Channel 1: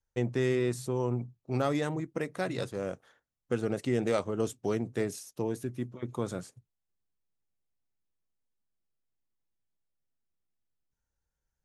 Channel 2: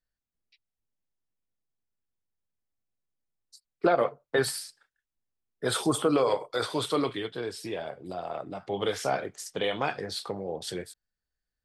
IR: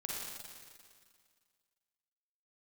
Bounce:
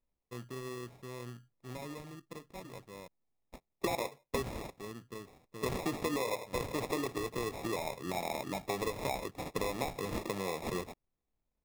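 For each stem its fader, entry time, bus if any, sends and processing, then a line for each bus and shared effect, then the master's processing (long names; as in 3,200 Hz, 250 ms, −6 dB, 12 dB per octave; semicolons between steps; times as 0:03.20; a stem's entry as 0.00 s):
−14.5 dB, 0.15 s, muted 0:03.08–0:04.50, no send, no processing
+2.5 dB, 0.00 s, no send, no processing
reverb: not used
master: Butterworth low-pass 9,200 Hz 48 dB per octave; decimation without filtering 29×; downward compressor 6 to 1, threshold −32 dBFS, peak gain reduction 15 dB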